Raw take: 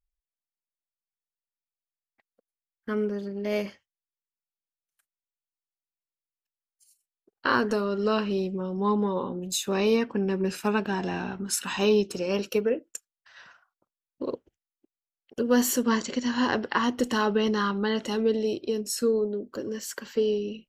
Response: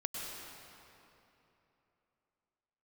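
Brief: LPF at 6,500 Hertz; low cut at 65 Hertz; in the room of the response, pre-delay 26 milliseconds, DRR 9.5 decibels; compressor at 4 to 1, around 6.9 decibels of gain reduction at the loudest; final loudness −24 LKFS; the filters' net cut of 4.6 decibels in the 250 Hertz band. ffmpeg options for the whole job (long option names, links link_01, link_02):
-filter_complex "[0:a]highpass=65,lowpass=6500,equalizer=frequency=250:width_type=o:gain=-5.5,acompressor=threshold=-28dB:ratio=4,asplit=2[link_01][link_02];[1:a]atrim=start_sample=2205,adelay=26[link_03];[link_02][link_03]afir=irnorm=-1:irlink=0,volume=-11.5dB[link_04];[link_01][link_04]amix=inputs=2:normalize=0,volume=8.5dB"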